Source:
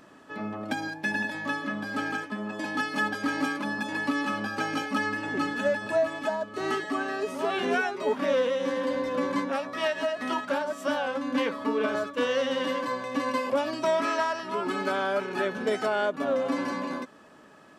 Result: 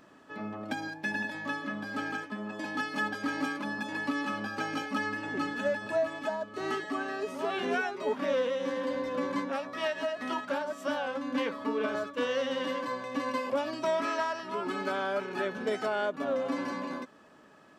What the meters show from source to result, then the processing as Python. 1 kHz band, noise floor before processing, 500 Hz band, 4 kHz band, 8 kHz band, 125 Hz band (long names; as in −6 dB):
−4.0 dB, −53 dBFS, −4.0 dB, −4.0 dB, −5.0 dB, −4.0 dB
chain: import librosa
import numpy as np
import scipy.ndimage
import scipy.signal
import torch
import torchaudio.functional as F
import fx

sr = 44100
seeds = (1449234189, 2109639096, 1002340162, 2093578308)

y = fx.peak_eq(x, sr, hz=10000.0, db=-3.5, octaves=0.67)
y = F.gain(torch.from_numpy(y), -4.0).numpy()